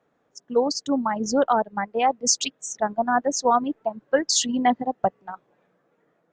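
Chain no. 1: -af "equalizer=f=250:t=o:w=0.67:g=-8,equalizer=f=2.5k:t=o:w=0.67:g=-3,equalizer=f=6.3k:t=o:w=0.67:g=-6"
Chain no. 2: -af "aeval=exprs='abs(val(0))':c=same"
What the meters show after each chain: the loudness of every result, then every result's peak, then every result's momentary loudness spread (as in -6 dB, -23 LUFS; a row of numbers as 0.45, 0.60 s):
-25.0, -28.0 LUFS; -8.5, -6.0 dBFS; 9, 9 LU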